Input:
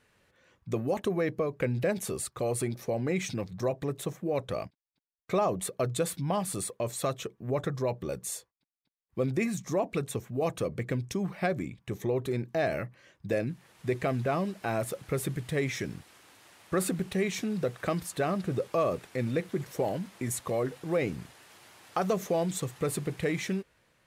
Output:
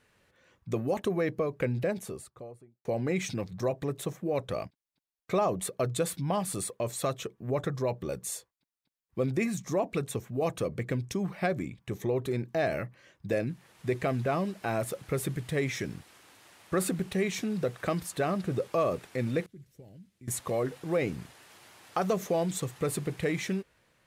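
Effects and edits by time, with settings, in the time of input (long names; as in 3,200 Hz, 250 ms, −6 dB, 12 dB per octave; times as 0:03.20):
0:01.54–0:02.85: fade out and dull
0:19.46–0:20.28: guitar amp tone stack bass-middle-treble 10-0-1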